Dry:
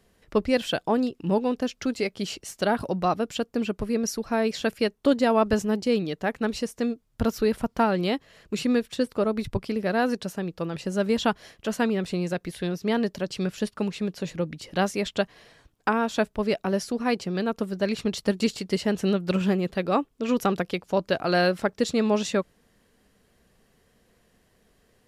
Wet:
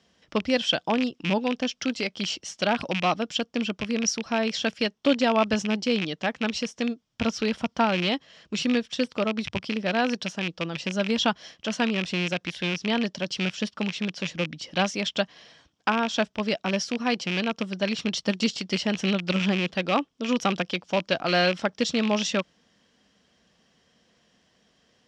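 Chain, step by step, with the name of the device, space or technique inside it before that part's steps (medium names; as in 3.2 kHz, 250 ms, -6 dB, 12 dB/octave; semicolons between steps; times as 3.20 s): car door speaker with a rattle (rattle on loud lows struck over -32 dBFS, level -20 dBFS; cabinet simulation 100–7100 Hz, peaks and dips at 110 Hz -8 dB, 410 Hz -7 dB, 3.2 kHz +8 dB, 5.5 kHz +8 dB)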